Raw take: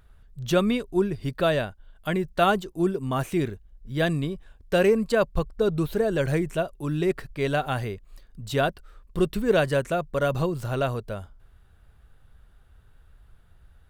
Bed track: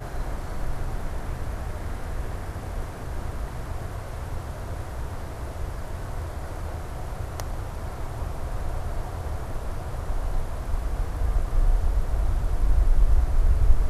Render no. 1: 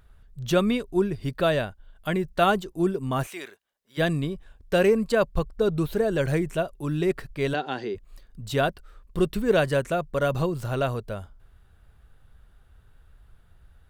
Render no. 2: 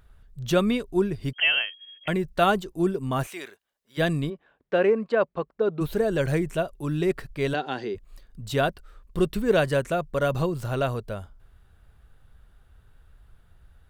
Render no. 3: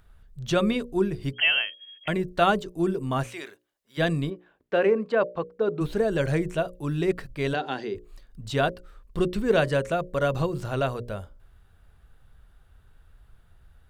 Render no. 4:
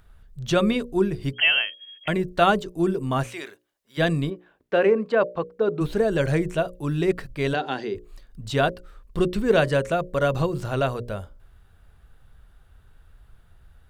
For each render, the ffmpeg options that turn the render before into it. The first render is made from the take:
ffmpeg -i in.wav -filter_complex "[0:a]asplit=3[link_01][link_02][link_03];[link_01]afade=type=out:start_time=3.26:duration=0.02[link_04];[link_02]highpass=800,afade=type=in:start_time=3.26:duration=0.02,afade=type=out:start_time=3.97:duration=0.02[link_05];[link_03]afade=type=in:start_time=3.97:duration=0.02[link_06];[link_04][link_05][link_06]amix=inputs=3:normalize=0,asplit=3[link_07][link_08][link_09];[link_07]afade=type=out:start_time=7.53:duration=0.02[link_10];[link_08]highpass=frequency=190:width=0.5412,highpass=frequency=190:width=1.3066,equalizer=frequency=360:width_type=q:width=4:gain=9,equalizer=frequency=610:width_type=q:width=4:gain=-7,equalizer=frequency=1200:width_type=q:width=4:gain=-8,equalizer=frequency=2300:width_type=q:width=4:gain=-5,equalizer=frequency=4900:width_type=q:width=4:gain=4,lowpass=frequency=5700:width=0.5412,lowpass=frequency=5700:width=1.3066,afade=type=in:start_time=7.53:duration=0.02,afade=type=out:start_time=7.94:duration=0.02[link_11];[link_09]afade=type=in:start_time=7.94:duration=0.02[link_12];[link_10][link_11][link_12]amix=inputs=3:normalize=0" out.wav
ffmpeg -i in.wav -filter_complex "[0:a]asettb=1/sr,asplit=3[link_01][link_02][link_03];[link_01]atrim=end=1.334[link_04];[link_02]atrim=start=1.33:end=2.08,asetpts=PTS-STARTPTS,afade=type=in:duration=0.004:curve=qsin,afade=type=out:start_time=0.746:duration=0.004:curve=qsin,lowpass=frequency=2800:width_type=q:width=0.5098,lowpass=frequency=2800:width_type=q:width=0.6013,lowpass=frequency=2800:width_type=q:width=0.9,lowpass=frequency=2800:width_type=q:width=2.563,afreqshift=-3300[link_05];[link_03]atrim=start=2.076[link_06];[link_04][link_05]acrossfade=duration=0.004:curve1=hsin:curve2=qsin[link_07];[link_07][link_06]acrossfade=duration=0.004:curve1=qsin:curve2=hsin,asplit=3[link_08][link_09][link_10];[link_08]afade=type=out:start_time=4.29:duration=0.02[link_11];[link_09]highpass=260,lowpass=2300,afade=type=in:start_time=4.29:duration=0.02,afade=type=out:start_time=5.8:duration=0.02[link_12];[link_10]afade=type=in:start_time=5.8:duration=0.02[link_13];[link_11][link_12][link_13]amix=inputs=3:normalize=0" out.wav
ffmpeg -i in.wav -filter_complex "[0:a]bandreject=frequency=60:width_type=h:width=6,bandreject=frequency=120:width_type=h:width=6,bandreject=frequency=180:width_type=h:width=6,bandreject=frequency=240:width_type=h:width=6,bandreject=frequency=300:width_type=h:width=6,bandreject=frequency=360:width_type=h:width=6,bandreject=frequency=420:width_type=h:width=6,bandreject=frequency=480:width_type=h:width=6,bandreject=frequency=540:width_type=h:width=6,bandreject=frequency=600:width_type=h:width=6,acrossover=split=8800[link_01][link_02];[link_02]acompressor=threshold=-60dB:ratio=4:attack=1:release=60[link_03];[link_01][link_03]amix=inputs=2:normalize=0" out.wav
ffmpeg -i in.wav -af "volume=2.5dB" out.wav

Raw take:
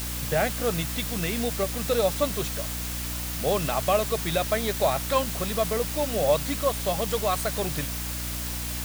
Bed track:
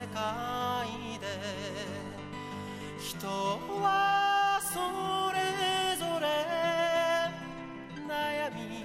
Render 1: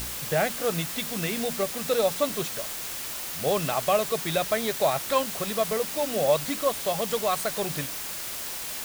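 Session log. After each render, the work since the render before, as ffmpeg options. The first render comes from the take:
ffmpeg -i in.wav -af "bandreject=frequency=60:width_type=h:width=4,bandreject=frequency=120:width_type=h:width=4,bandreject=frequency=180:width_type=h:width=4,bandreject=frequency=240:width_type=h:width=4,bandreject=frequency=300:width_type=h:width=4" out.wav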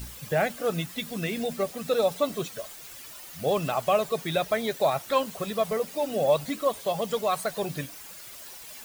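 ffmpeg -i in.wav -af "afftdn=noise_reduction=12:noise_floor=-35" out.wav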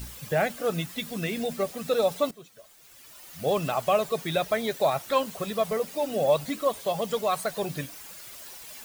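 ffmpeg -i in.wav -filter_complex "[0:a]asplit=2[link_01][link_02];[link_01]atrim=end=2.31,asetpts=PTS-STARTPTS,afade=type=out:start_time=2.306:duration=0.004:curve=hsin:silence=0.141254[link_03];[link_02]atrim=start=2.31,asetpts=PTS-STARTPTS,afade=type=in:duration=1.18:curve=qua:silence=0.141254[link_04];[link_03][link_04]concat=n=2:v=0:a=1" out.wav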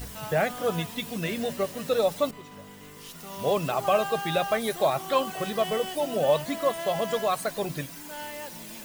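ffmpeg -i in.wav -i bed.wav -filter_complex "[1:a]volume=-6.5dB[link_01];[0:a][link_01]amix=inputs=2:normalize=0" out.wav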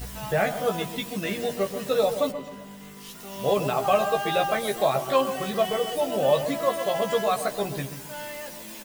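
ffmpeg -i in.wav -filter_complex "[0:a]asplit=2[link_01][link_02];[link_02]adelay=15,volume=-4.5dB[link_03];[link_01][link_03]amix=inputs=2:normalize=0,asplit=2[link_04][link_05];[link_05]adelay=131,lowpass=frequency=820:poles=1,volume=-8dB,asplit=2[link_06][link_07];[link_07]adelay=131,lowpass=frequency=820:poles=1,volume=0.46,asplit=2[link_08][link_09];[link_09]adelay=131,lowpass=frequency=820:poles=1,volume=0.46,asplit=2[link_10][link_11];[link_11]adelay=131,lowpass=frequency=820:poles=1,volume=0.46,asplit=2[link_12][link_13];[link_13]adelay=131,lowpass=frequency=820:poles=1,volume=0.46[link_14];[link_06][link_08][link_10][link_12][link_14]amix=inputs=5:normalize=0[link_15];[link_04][link_15]amix=inputs=2:normalize=0" out.wav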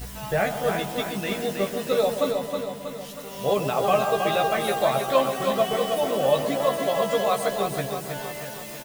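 ffmpeg -i in.wav -af "aecho=1:1:319|638|957|1276|1595|1914|2233:0.531|0.281|0.149|0.079|0.0419|0.0222|0.0118" out.wav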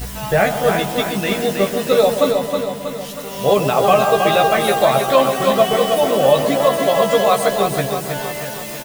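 ffmpeg -i in.wav -af "volume=8.5dB,alimiter=limit=-2dB:level=0:latency=1" out.wav

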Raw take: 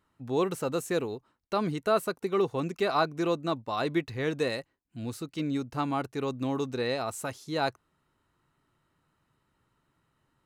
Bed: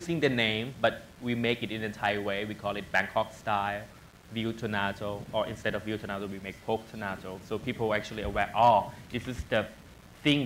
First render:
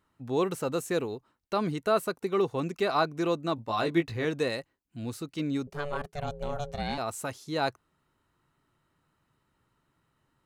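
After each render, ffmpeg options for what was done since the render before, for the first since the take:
ffmpeg -i in.wav -filter_complex "[0:a]asettb=1/sr,asplit=3[link_01][link_02][link_03];[link_01]atrim=end=3.564[link_04];[link_02]atrim=start=3.56:end=4.25,asetpts=PTS-STARTPTS,afade=type=in:duration=0.004:curve=qsin,afade=type=out:start_time=0.686:duration=0.004:curve=qsin,asplit=2[link_05][link_06];[link_06]adelay=18,volume=-4.5dB[link_07];[link_05][link_07]amix=inputs=2:normalize=0,atrim=end_sample=30429[link_08];[link_03]atrim=start=4.246[link_09];[link_04][link_08]acrossfade=duration=0.004:curve1=hsin:curve2=qsin[link_10];[link_10][link_09]acrossfade=duration=0.004:curve1=qsin:curve2=hsin,asettb=1/sr,asplit=3[link_11][link_12][link_13];[link_11]atrim=end=5.674[link_14];[link_12]atrim=start=5.67:end=6.98,asetpts=PTS-STARTPTS,afade=type=in:duration=0.004:curve=qsin,afade=type=out:start_time=1.306:duration=0.004:curve=qsin,aeval=exprs='val(0)*sin(2*PI*290*n/s)':channel_layout=same[link_15];[link_13]atrim=start=6.976[link_16];[link_14][link_15]acrossfade=duration=0.004:curve1=hsin:curve2=qsin[link_17];[link_17][link_16]acrossfade=duration=0.004:curve1=qsin:curve2=hsin" out.wav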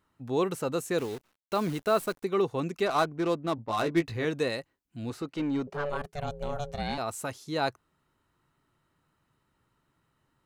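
ffmpeg -i in.wav -filter_complex "[0:a]asettb=1/sr,asplit=3[link_01][link_02][link_03];[link_01]atrim=end=0.984[link_04];[link_02]atrim=start=0.98:end=2.24,asetpts=PTS-STARTPTS,afade=type=in:duration=0.004:curve=qsin,afade=type=out:start_time=1.256:duration=0.004:curve=qsin,acrusher=bits=8:dc=4:mix=0:aa=0.000001[link_05];[link_03]atrim=start=2.236[link_06];[link_04][link_05]acrossfade=duration=0.004:curve1=hsin:curve2=qsin[link_07];[link_07][link_06]acrossfade=duration=0.004:curve1=qsin:curve2=hsin,asettb=1/sr,asplit=3[link_08][link_09][link_10];[link_08]atrim=end=2.864[link_11];[link_09]atrim=start=2.86:end=4.03,asetpts=PTS-STARTPTS,afade=type=in:duration=0.004:curve=qsin,afade=type=out:start_time=1.166:duration=0.004:curve=qsin,adynamicsmooth=sensitivity=7.5:basefreq=1100[link_12];[link_10]atrim=start=4.026[link_13];[link_11][link_12]acrossfade=duration=0.004:curve1=hsin:curve2=qsin[link_14];[link_14][link_13]acrossfade=duration=0.004:curve1=qsin:curve2=hsin,asettb=1/sr,asplit=3[link_15][link_16][link_17];[link_15]atrim=end=5.104[link_18];[link_16]atrim=start=5.1:end=5.9,asetpts=PTS-STARTPTS,afade=type=in:duration=0.004:curve=qsin,afade=type=out:start_time=0.796:duration=0.004:curve=qsin,asplit=2[link_19][link_20];[link_20]highpass=frequency=720:poles=1,volume=18dB,asoftclip=type=tanh:threshold=-21dB[link_21];[link_19][link_21]amix=inputs=2:normalize=0,lowpass=frequency=1000:poles=1,volume=-6dB[link_22];[link_17]atrim=start=5.896[link_23];[link_18][link_22]acrossfade=duration=0.004:curve1=hsin:curve2=qsin[link_24];[link_24][link_23]acrossfade=duration=0.004:curve1=qsin:curve2=hsin" out.wav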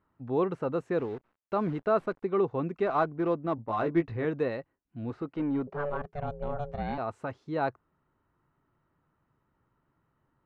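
ffmpeg -i in.wav -af "lowpass=1600" out.wav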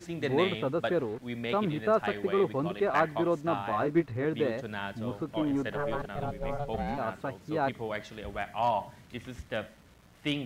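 ffmpeg -i in.wav -i bed.wav -filter_complex "[1:a]volume=-6.5dB[link_01];[0:a][link_01]amix=inputs=2:normalize=0" out.wav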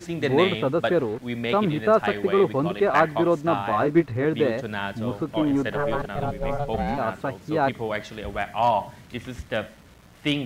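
ffmpeg -i in.wav -af "volume=7dB" out.wav

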